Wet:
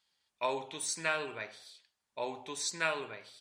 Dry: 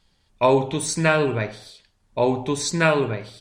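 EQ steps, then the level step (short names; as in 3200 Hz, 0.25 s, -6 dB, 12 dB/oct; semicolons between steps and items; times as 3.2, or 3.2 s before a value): HPF 1400 Hz 6 dB/oct; -8.5 dB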